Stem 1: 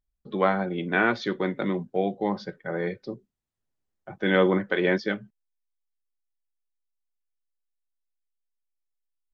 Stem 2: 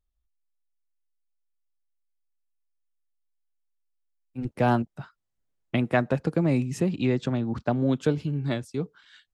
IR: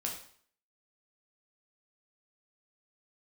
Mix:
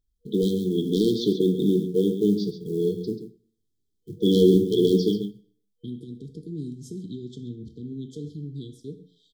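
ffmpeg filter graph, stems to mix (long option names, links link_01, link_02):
-filter_complex "[0:a]highshelf=frequency=4600:gain=-4,volume=14.5dB,asoftclip=hard,volume=-14.5dB,acrusher=bits=8:mode=log:mix=0:aa=0.000001,volume=2.5dB,asplit=3[link_01][link_02][link_03];[link_02]volume=-4.5dB[link_04];[link_03]volume=-7dB[link_05];[1:a]alimiter=limit=-18dB:level=0:latency=1:release=55,adelay=100,volume=-12dB,asplit=3[link_06][link_07][link_08];[link_07]volume=-3dB[link_09];[link_08]volume=-17dB[link_10];[2:a]atrim=start_sample=2205[link_11];[link_04][link_09]amix=inputs=2:normalize=0[link_12];[link_12][link_11]afir=irnorm=-1:irlink=0[link_13];[link_05][link_10]amix=inputs=2:normalize=0,aecho=0:1:136:1[link_14];[link_01][link_06][link_13][link_14]amix=inputs=4:normalize=0,afftfilt=real='re*(1-between(b*sr/4096,480,3100))':imag='im*(1-between(b*sr/4096,480,3100))':win_size=4096:overlap=0.75"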